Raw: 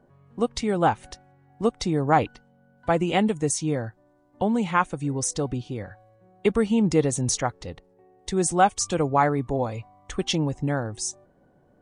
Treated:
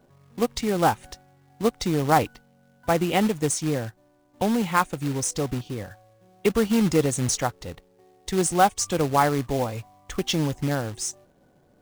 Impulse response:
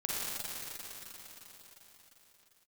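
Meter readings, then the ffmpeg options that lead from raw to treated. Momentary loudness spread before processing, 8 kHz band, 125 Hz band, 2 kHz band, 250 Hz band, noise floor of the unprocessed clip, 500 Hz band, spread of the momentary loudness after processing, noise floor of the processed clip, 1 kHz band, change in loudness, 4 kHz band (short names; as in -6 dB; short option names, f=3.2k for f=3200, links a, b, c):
13 LU, +0.5 dB, 0.0 dB, +1.0 dB, 0.0 dB, -61 dBFS, 0.0 dB, 13 LU, -60 dBFS, 0.0 dB, +0.5 dB, +1.5 dB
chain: -af "acrusher=bits=3:mode=log:mix=0:aa=0.000001"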